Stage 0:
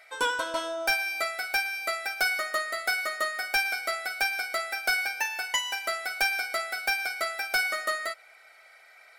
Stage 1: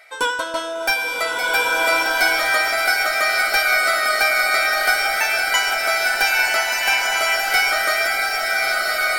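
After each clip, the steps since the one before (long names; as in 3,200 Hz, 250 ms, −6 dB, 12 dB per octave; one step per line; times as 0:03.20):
slow-attack reverb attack 1,610 ms, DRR −3.5 dB
level +6 dB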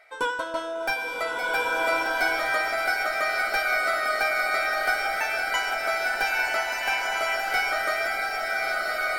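high-shelf EQ 2,400 Hz −10.5 dB
level −3.5 dB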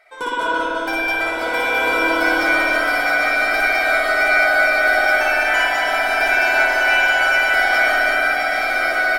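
loudspeakers that aren't time-aligned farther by 20 metres −2 dB, 71 metres −1 dB
spring reverb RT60 3.4 s, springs 55 ms, chirp 45 ms, DRR −5.5 dB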